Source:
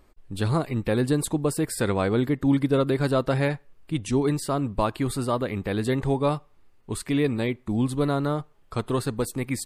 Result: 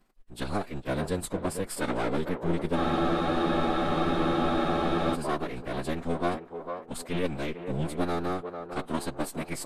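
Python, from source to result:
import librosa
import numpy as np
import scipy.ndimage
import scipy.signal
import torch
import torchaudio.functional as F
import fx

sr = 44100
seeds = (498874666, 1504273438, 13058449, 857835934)

y = np.where(x < 0.0, 10.0 ** (-12.0 / 20.0) * x, x)
y = fx.peak_eq(y, sr, hz=110.0, db=-14.5, octaves=1.7)
y = fx.echo_banded(y, sr, ms=450, feedback_pct=50, hz=670.0, wet_db=-6)
y = fx.pitch_keep_formants(y, sr, semitones=-8.5)
y = fx.spec_freeze(y, sr, seeds[0], at_s=2.79, hold_s=2.35)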